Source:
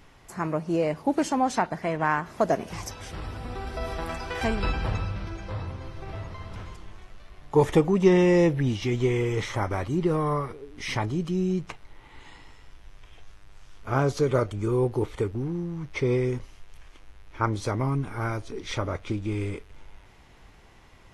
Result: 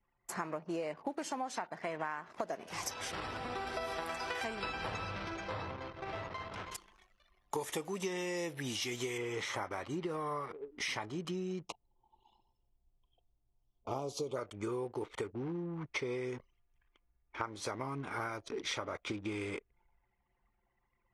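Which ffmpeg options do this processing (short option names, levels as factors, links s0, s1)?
-filter_complex "[0:a]asettb=1/sr,asplit=3[s0][s1][s2];[s0]atrim=end=6.714[s3];[s1]atrim=start=6.71:end=9.18,asetpts=PTS-STARTPTS,afade=t=in:d=0.004:c=qsin,afade=t=out:st=2.466:d=0.004:c=qsin,aemphasis=mode=production:type=75fm[s4];[s2]atrim=start=9.176[s5];[s3][s4]acrossfade=d=0.004:c1=hsin:c2=qsin[s6];[s6][s5]acrossfade=d=0.004:c1=qsin:c2=hsin,asplit=3[s7][s8][s9];[s7]afade=t=out:st=11.64:d=0.02[s10];[s8]asuperstop=centerf=1700:order=4:qfactor=0.87,afade=t=in:st=11.64:d=0.02,afade=t=out:st=14.35:d=0.02[s11];[s9]afade=t=in:st=14.35:d=0.02[s12];[s10][s11][s12]amix=inputs=3:normalize=0,highpass=f=600:p=1,anlmdn=0.0158,acompressor=threshold=0.0126:ratio=12,volume=1.5"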